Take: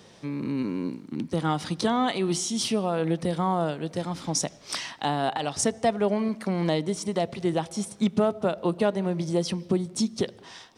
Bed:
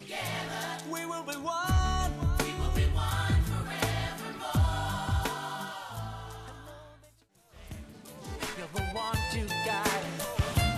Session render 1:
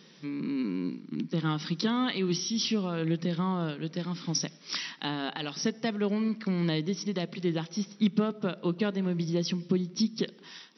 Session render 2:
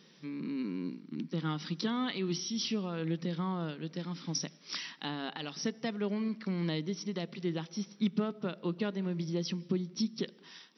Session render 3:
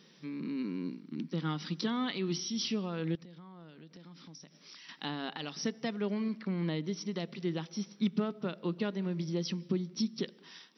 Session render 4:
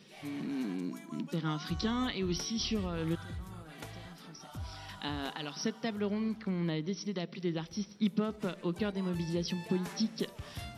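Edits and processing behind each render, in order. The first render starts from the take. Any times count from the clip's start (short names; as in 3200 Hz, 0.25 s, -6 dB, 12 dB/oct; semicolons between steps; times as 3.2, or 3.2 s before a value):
FFT band-pass 140–5900 Hz; bell 700 Hz -14 dB 1.1 oct
gain -5 dB
3.15–4.89 compressor 5:1, threshold -50 dBFS; 6.41–6.84 Gaussian blur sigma 2 samples
add bed -16.5 dB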